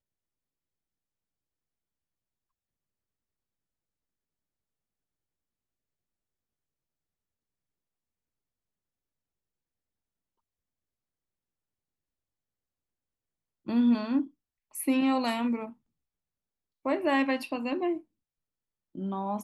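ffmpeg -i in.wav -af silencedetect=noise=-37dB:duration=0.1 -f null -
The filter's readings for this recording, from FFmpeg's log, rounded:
silence_start: 0.00
silence_end: 13.68 | silence_duration: 13.68
silence_start: 14.25
silence_end: 14.75 | silence_duration: 0.50
silence_start: 15.69
silence_end: 16.86 | silence_duration: 1.16
silence_start: 17.98
silence_end: 18.95 | silence_duration: 0.98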